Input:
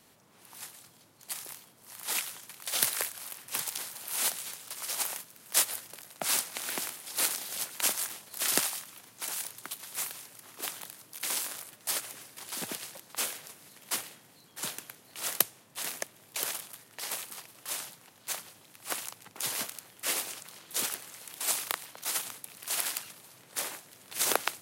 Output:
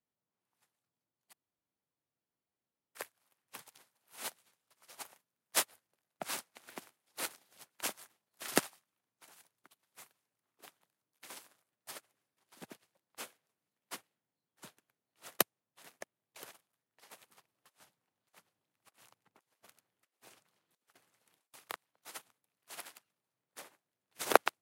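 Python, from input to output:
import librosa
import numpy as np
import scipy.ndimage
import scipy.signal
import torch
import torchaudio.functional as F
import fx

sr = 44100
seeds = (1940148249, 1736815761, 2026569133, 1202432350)

y = fx.over_compress(x, sr, threshold_db=-40.0, ratio=-0.5, at=(17.21, 21.54))
y = fx.edit(y, sr, fx.room_tone_fill(start_s=1.33, length_s=1.62), tone=tone)
y = fx.high_shelf(y, sr, hz=3000.0, db=-10.0)
y = fx.upward_expand(y, sr, threshold_db=-52.0, expansion=2.5)
y = F.gain(torch.from_numpy(y), 7.5).numpy()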